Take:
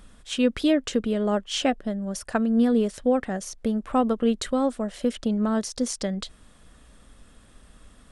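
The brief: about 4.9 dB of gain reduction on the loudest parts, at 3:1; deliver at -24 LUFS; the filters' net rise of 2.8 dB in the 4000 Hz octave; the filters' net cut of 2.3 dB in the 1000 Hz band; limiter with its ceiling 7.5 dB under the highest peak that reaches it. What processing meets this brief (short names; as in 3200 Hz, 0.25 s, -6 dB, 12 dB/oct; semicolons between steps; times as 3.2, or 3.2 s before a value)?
bell 1000 Hz -3.5 dB; bell 4000 Hz +4 dB; compressor 3:1, threshold -23 dBFS; gain +6 dB; limiter -14 dBFS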